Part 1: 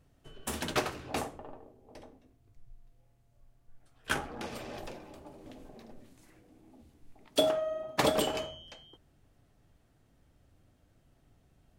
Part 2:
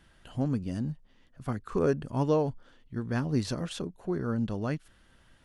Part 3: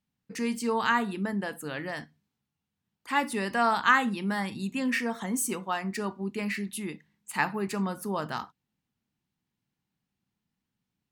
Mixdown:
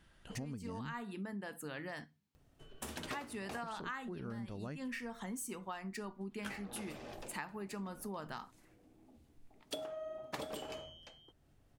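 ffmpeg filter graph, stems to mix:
-filter_complex "[0:a]acompressor=mode=upward:threshold=0.00178:ratio=2.5,adelay=2350,volume=0.501[s0];[1:a]volume=0.562,asplit=3[s1][s2][s3];[s1]atrim=end=1.03,asetpts=PTS-STARTPTS,afade=t=out:st=1.026:d=0.004:c=hsin[s4];[s2]atrim=start=1.03:end=3.63,asetpts=PTS-STARTPTS,volume=0[s5];[s3]atrim=start=3.63,asetpts=PTS-STARTPTS,afade=t=in:d=0.004:c=hsin[s6];[s4][s5][s6]concat=n=3:v=0:a=1,asplit=2[s7][s8];[2:a]volume=0.531[s9];[s8]apad=whole_len=490379[s10];[s9][s10]sidechaincompress=threshold=0.00708:ratio=8:attack=45:release=121[s11];[s0][s7][s11]amix=inputs=3:normalize=0,acompressor=threshold=0.01:ratio=6"

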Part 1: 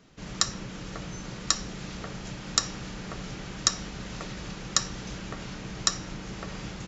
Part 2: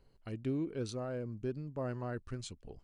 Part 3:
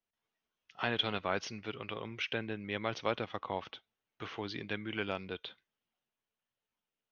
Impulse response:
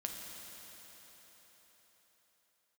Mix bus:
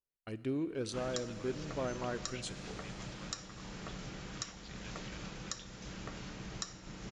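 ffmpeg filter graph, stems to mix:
-filter_complex "[0:a]alimiter=limit=0.188:level=0:latency=1:release=440,adelay=750,volume=0.335,asplit=2[s0][s1];[s1]volume=0.447[s2];[1:a]lowshelf=f=220:g=-9.5,volume=1.12,asplit=2[s3][s4];[s4]volume=0.422[s5];[2:a]acompressor=threshold=0.00708:ratio=6,highpass=1100,adelay=150,volume=0.596[s6];[3:a]atrim=start_sample=2205[s7];[s2][s5]amix=inputs=2:normalize=0[s8];[s8][s7]afir=irnorm=-1:irlink=0[s9];[s0][s3][s6][s9]amix=inputs=4:normalize=0,agate=range=0.0224:threshold=0.00501:ratio=3:detection=peak"

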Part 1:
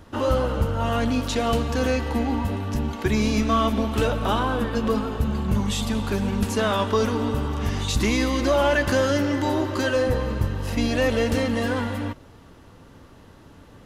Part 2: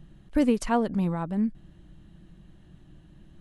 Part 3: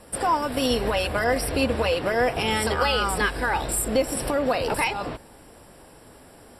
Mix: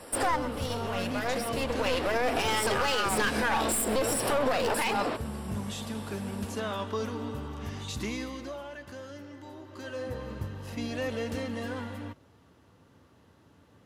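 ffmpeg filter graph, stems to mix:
-filter_complex "[0:a]highpass=f=70:w=0.5412,highpass=f=70:w=1.3066,volume=1.06,afade=t=out:st=8.01:d=0.63:silence=0.266073,afade=t=in:st=9.64:d=0.69:silence=0.266073[s0];[1:a]volume=0.141,asplit=2[s1][s2];[2:a]highpass=270,aeval=exprs='clip(val(0),-1,0.0335)':c=same,volume=1.41,asplit=2[s3][s4];[s4]volume=0.075[s5];[s2]apad=whole_len=290883[s6];[s3][s6]sidechaincompress=threshold=0.00282:ratio=4:attack=8.2:release=810[s7];[s5]aecho=0:1:129:1[s8];[s0][s1][s7][s8]amix=inputs=4:normalize=0,alimiter=limit=0.141:level=0:latency=1:release=55"

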